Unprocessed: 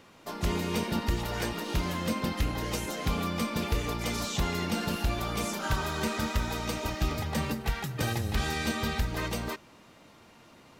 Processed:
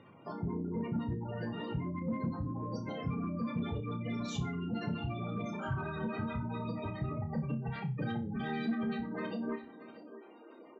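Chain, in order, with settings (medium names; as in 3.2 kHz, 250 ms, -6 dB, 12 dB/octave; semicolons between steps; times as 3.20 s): in parallel at -1 dB: compression, threshold -39 dBFS, peak gain reduction 15 dB; 2.30–2.87 s: on the sum: high-order bell 2.8 kHz -12.5 dB 1 oct; 3.43–4.13 s: doubling 42 ms -13 dB; feedback delay 640 ms, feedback 45%, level -15.5 dB; high-pass sweep 120 Hz -> 340 Hz, 7.14–10.46 s; spectral gate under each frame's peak -15 dB strong; on a send: flutter echo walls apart 5.2 m, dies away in 0.26 s; on the sum: saturation -16.5 dBFS, distortion -22 dB; trim -8 dB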